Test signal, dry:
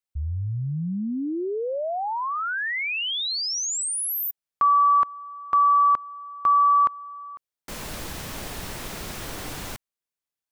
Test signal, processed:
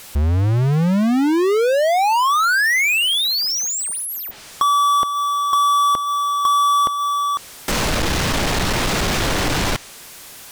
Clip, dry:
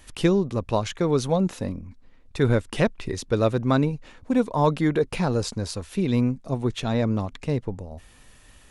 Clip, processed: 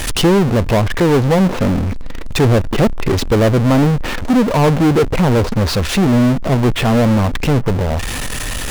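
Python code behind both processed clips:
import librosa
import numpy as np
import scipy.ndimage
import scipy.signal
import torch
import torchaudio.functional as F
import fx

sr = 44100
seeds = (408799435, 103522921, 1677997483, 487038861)

y = fx.env_lowpass_down(x, sr, base_hz=750.0, full_db=-21.0)
y = fx.power_curve(y, sr, exponent=0.35)
y = y * 10.0 ** (3.5 / 20.0)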